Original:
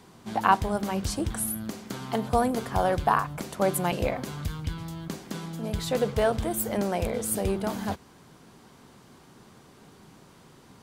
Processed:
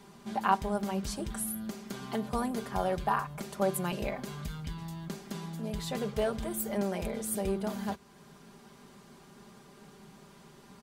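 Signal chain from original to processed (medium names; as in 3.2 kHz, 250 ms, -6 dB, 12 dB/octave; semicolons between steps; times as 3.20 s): comb 5 ms, depth 68%; in parallel at -1.5 dB: compression, threshold -40 dBFS, peak gain reduction 25.5 dB; on the sum: trim -8.5 dB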